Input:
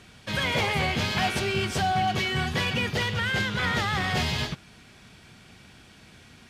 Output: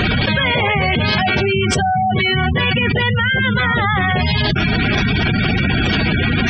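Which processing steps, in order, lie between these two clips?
spectral gate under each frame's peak -15 dB strong; level flattener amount 100%; trim +7.5 dB

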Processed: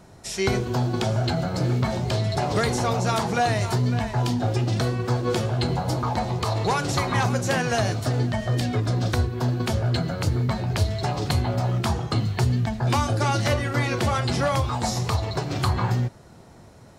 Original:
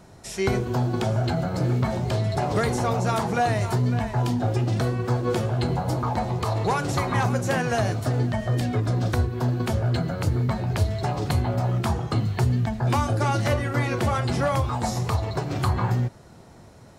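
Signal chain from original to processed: dynamic bell 4.5 kHz, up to +6 dB, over -47 dBFS, Q 0.73

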